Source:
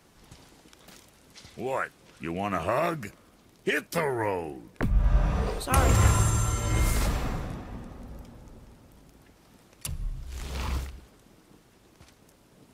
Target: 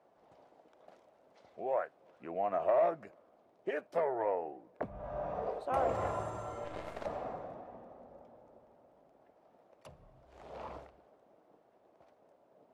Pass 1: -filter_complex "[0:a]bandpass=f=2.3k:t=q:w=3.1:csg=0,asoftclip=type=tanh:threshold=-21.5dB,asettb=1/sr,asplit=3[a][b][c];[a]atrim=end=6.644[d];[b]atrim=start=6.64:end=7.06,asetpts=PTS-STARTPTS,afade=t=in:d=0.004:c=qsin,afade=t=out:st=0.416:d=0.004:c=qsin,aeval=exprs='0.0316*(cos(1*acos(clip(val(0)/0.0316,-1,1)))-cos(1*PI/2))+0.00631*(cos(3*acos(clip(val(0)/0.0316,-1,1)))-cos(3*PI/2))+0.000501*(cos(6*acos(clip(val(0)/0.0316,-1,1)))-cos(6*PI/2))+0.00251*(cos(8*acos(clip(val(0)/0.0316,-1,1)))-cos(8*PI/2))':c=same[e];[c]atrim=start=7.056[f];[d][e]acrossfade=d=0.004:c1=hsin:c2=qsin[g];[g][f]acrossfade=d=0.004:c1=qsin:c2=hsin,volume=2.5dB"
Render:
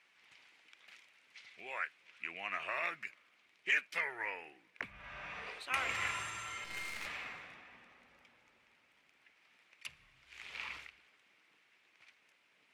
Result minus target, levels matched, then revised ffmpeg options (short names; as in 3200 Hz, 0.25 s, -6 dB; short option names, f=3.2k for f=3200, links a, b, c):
2000 Hz band +16.0 dB
-filter_complex "[0:a]bandpass=f=640:t=q:w=3.1:csg=0,asoftclip=type=tanh:threshold=-21.5dB,asettb=1/sr,asplit=3[a][b][c];[a]atrim=end=6.644[d];[b]atrim=start=6.64:end=7.06,asetpts=PTS-STARTPTS,afade=t=in:d=0.004:c=qsin,afade=t=out:st=0.416:d=0.004:c=qsin,aeval=exprs='0.0316*(cos(1*acos(clip(val(0)/0.0316,-1,1)))-cos(1*PI/2))+0.00631*(cos(3*acos(clip(val(0)/0.0316,-1,1)))-cos(3*PI/2))+0.000501*(cos(6*acos(clip(val(0)/0.0316,-1,1)))-cos(6*PI/2))+0.00251*(cos(8*acos(clip(val(0)/0.0316,-1,1)))-cos(8*PI/2))':c=same[e];[c]atrim=start=7.056[f];[d][e]acrossfade=d=0.004:c1=hsin:c2=qsin[g];[g][f]acrossfade=d=0.004:c1=qsin:c2=hsin,volume=2.5dB"